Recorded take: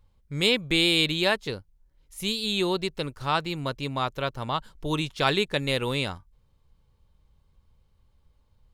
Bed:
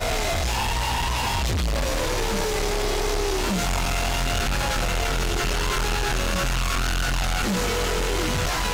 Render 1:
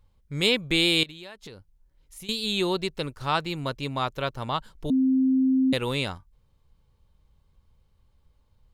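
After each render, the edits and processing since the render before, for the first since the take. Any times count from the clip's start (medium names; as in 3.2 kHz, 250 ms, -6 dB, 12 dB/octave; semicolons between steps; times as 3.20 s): 1.03–2.29 s: compression 8:1, threshold -39 dBFS; 4.90–5.73 s: bleep 262 Hz -18 dBFS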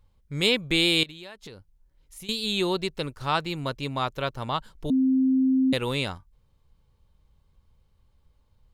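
no audible change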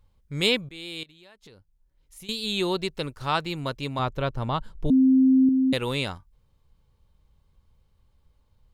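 0.69–2.74 s: fade in linear, from -22 dB; 3.99–5.49 s: tilt EQ -2 dB/octave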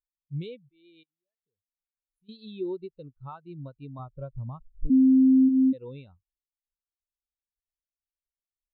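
compression 5:1, threshold -27 dBFS, peak gain reduction 9.5 dB; spectral contrast expander 2.5:1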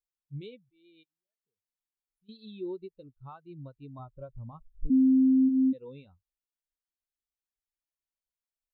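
flange 0.28 Hz, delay 2.3 ms, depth 2.8 ms, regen -55%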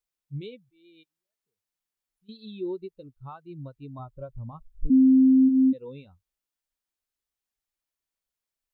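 trim +4.5 dB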